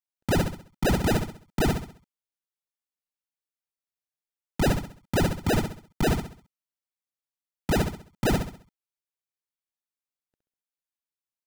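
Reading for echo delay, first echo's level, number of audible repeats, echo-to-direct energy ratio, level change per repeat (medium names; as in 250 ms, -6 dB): 66 ms, -6.0 dB, 4, -5.5 dB, -8.5 dB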